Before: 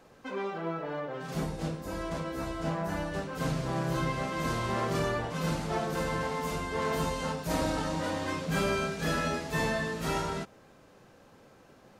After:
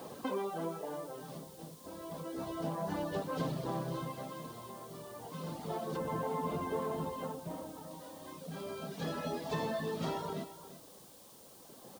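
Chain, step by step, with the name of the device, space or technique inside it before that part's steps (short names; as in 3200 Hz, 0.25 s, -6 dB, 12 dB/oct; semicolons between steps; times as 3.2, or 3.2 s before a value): 5.97–7.91 air absorption 390 m; reverb removal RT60 0.72 s; medium wave at night (BPF 140–3900 Hz; compressor, threshold -45 dBFS, peak gain reduction 16.5 dB; tremolo 0.31 Hz, depth 80%; whine 9000 Hz -80 dBFS; white noise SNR 19 dB); band shelf 1900 Hz -8.5 dB 1.2 oct; echo 0.349 s -13.5 dB; gain +12 dB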